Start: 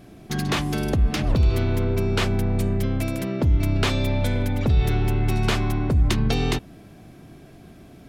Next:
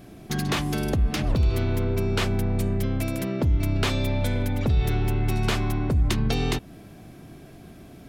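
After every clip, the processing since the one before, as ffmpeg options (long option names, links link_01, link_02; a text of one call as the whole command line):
ffmpeg -i in.wav -filter_complex "[0:a]highshelf=frequency=11000:gain=5,asplit=2[link_01][link_02];[link_02]acompressor=threshold=-27dB:ratio=6,volume=-2dB[link_03];[link_01][link_03]amix=inputs=2:normalize=0,volume=-4.5dB" out.wav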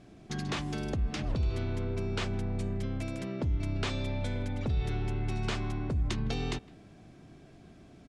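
ffmpeg -i in.wav -filter_complex "[0:a]lowpass=frequency=8200:width=0.5412,lowpass=frequency=8200:width=1.3066,asplit=2[link_01][link_02];[link_02]adelay=160,highpass=300,lowpass=3400,asoftclip=type=hard:threshold=-21.5dB,volume=-23dB[link_03];[link_01][link_03]amix=inputs=2:normalize=0,volume=-8.5dB" out.wav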